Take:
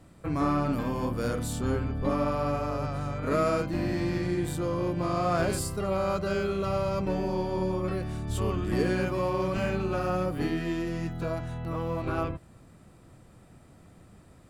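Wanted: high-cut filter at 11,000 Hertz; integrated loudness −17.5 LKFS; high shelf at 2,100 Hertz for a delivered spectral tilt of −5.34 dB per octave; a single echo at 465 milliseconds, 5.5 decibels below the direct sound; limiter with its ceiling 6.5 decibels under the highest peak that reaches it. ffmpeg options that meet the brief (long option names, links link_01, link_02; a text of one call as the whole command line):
ffmpeg -i in.wav -af "lowpass=11000,highshelf=frequency=2100:gain=8.5,alimiter=limit=-19.5dB:level=0:latency=1,aecho=1:1:465:0.531,volume=11dB" out.wav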